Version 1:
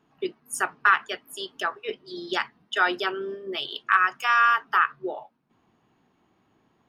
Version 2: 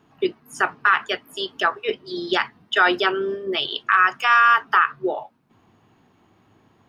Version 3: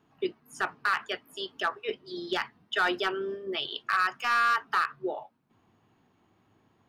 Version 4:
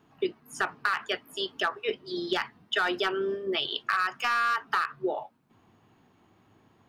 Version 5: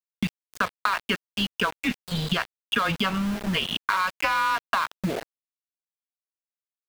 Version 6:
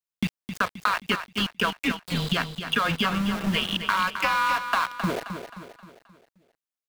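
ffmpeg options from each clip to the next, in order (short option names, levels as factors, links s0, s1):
-filter_complex "[0:a]acrossover=split=5300[s0][s1];[s1]acompressor=threshold=0.00178:ratio=4:attack=1:release=60[s2];[s0][s2]amix=inputs=2:normalize=0,equalizer=f=100:t=o:w=0.35:g=9,alimiter=limit=0.211:level=0:latency=1:release=29,volume=2.37"
-af "volume=3.35,asoftclip=hard,volume=0.299,volume=0.376"
-af "acompressor=threshold=0.0398:ratio=5,volume=1.68"
-filter_complex "[0:a]afreqshift=-190,aeval=exprs='val(0)*gte(abs(val(0)),0.0211)':c=same,acrossover=split=1900|4000[s0][s1][s2];[s0]acompressor=threshold=0.0251:ratio=4[s3];[s1]acompressor=threshold=0.02:ratio=4[s4];[s2]acompressor=threshold=0.00282:ratio=4[s5];[s3][s4][s5]amix=inputs=3:normalize=0,volume=2.51"
-af "aecho=1:1:264|528|792|1056|1320:0.355|0.163|0.0751|0.0345|0.0159"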